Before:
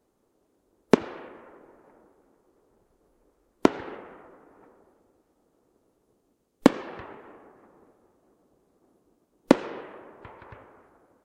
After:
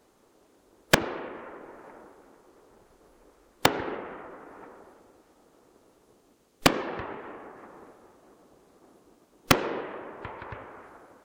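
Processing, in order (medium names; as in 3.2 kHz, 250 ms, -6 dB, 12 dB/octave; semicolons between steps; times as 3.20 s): integer overflow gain 10.5 dB; treble shelf 7.6 kHz -8 dB; tape noise reduction on one side only encoder only; trim +5.5 dB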